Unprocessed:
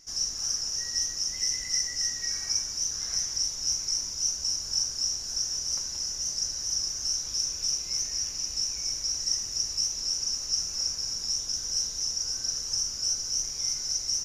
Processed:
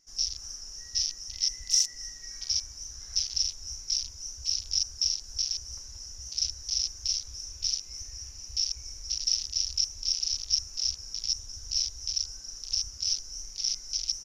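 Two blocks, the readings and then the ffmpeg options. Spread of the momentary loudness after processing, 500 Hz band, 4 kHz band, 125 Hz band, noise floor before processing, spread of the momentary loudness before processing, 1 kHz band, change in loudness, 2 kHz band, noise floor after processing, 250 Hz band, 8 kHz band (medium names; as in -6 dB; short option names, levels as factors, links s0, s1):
12 LU, under -10 dB, -1.0 dB, +0.5 dB, -36 dBFS, 2 LU, under -10 dB, -2.0 dB, -8.0 dB, -46 dBFS, under -10 dB, -4.5 dB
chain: -af "aecho=1:1:32|78:0.224|0.266,afwtdn=0.0316,volume=1.68"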